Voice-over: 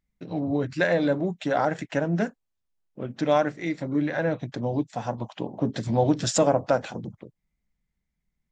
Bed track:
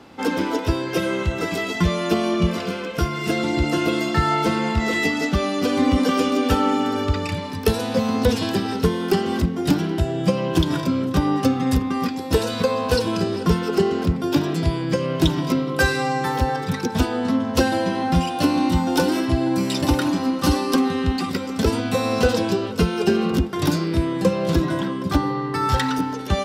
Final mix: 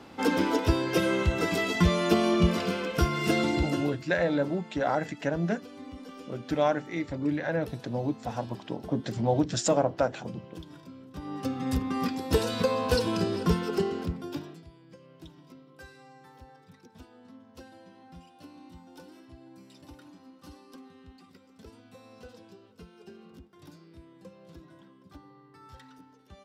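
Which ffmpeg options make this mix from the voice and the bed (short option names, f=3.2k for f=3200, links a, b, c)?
-filter_complex "[0:a]adelay=3300,volume=-3.5dB[a];[1:a]volume=17dB,afade=t=out:st=3.4:d=0.57:silence=0.0749894,afade=t=in:st=11.12:d=0.97:silence=0.1,afade=t=out:st=13.4:d=1.24:silence=0.0562341[b];[a][b]amix=inputs=2:normalize=0"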